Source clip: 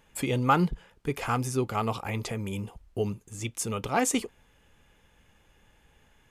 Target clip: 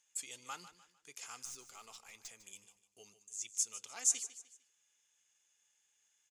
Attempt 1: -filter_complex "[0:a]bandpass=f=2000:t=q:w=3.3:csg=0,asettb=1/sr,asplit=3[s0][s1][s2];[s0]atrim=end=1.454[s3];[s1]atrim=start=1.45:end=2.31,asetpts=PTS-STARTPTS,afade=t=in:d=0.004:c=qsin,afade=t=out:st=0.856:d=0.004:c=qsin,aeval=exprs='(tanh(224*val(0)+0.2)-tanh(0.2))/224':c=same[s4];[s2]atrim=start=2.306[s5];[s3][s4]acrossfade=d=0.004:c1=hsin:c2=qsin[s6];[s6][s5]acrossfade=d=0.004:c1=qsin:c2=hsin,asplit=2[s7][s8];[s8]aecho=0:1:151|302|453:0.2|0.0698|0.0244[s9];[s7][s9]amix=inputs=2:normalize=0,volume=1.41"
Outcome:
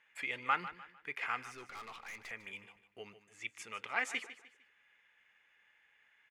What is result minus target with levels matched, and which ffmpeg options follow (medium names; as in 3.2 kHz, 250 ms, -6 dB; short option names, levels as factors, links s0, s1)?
2 kHz band +18.5 dB
-filter_complex "[0:a]bandpass=f=6700:t=q:w=3.3:csg=0,asettb=1/sr,asplit=3[s0][s1][s2];[s0]atrim=end=1.454[s3];[s1]atrim=start=1.45:end=2.31,asetpts=PTS-STARTPTS,afade=t=in:d=0.004:c=qsin,afade=t=out:st=0.856:d=0.004:c=qsin,aeval=exprs='(tanh(224*val(0)+0.2)-tanh(0.2))/224':c=same[s4];[s2]atrim=start=2.306[s5];[s3][s4]acrossfade=d=0.004:c1=hsin:c2=qsin[s6];[s6][s5]acrossfade=d=0.004:c1=qsin:c2=hsin,asplit=2[s7][s8];[s8]aecho=0:1:151|302|453:0.2|0.0698|0.0244[s9];[s7][s9]amix=inputs=2:normalize=0,volume=1.41"